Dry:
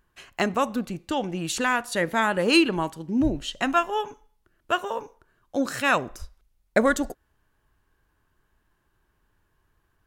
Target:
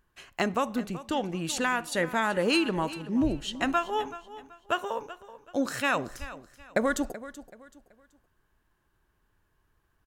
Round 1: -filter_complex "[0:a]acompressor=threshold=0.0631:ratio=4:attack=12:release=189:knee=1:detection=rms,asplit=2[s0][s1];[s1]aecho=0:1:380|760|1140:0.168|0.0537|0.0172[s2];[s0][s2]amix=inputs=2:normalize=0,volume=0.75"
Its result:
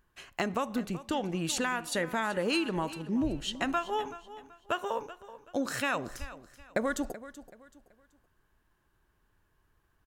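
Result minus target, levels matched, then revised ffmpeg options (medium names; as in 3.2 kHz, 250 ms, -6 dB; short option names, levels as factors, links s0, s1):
compression: peak gain reduction +4.5 dB
-filter_complex "[0:a]acompressor=threshold=0.126:ratio=4:attack=12:release=189:knee=1:detection=rms,asplit=2[s0][s1];[s1]aecho=0:1:380|760|1140:0.168|0.0537|0.0172[s2];[s0][s2]amix=inputs=2:normalize=0,volume=0.75"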